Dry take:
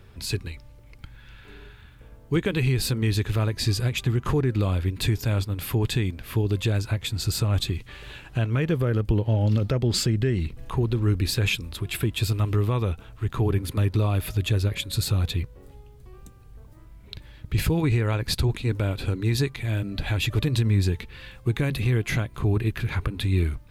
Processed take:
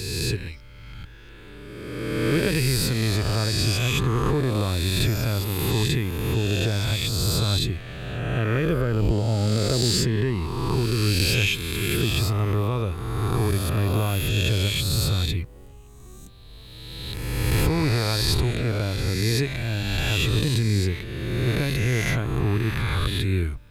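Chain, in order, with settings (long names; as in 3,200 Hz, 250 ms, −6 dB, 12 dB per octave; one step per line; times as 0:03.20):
peak hold with a rise ahead of every peak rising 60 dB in 1.96 s
level −2 dB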